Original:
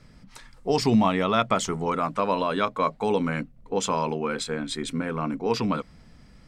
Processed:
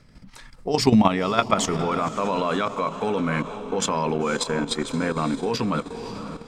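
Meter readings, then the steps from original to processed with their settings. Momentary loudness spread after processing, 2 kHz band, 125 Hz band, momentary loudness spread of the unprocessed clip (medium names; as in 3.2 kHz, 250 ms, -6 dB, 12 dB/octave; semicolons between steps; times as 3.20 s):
9 LU, +2.5 dB, +3.0 dB, 9 LU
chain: echo that smears into a reverb 531 ms, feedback 51%, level -12 dB; level held to a coarse grid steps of 10 dB; trim +6.5 dB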